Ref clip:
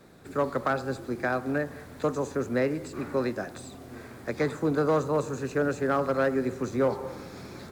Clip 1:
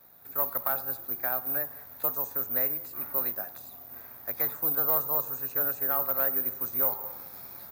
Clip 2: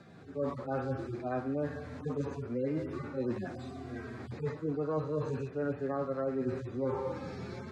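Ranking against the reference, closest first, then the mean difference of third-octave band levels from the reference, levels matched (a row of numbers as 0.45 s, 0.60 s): 2, 1; 7.0 dB, 10.0 dB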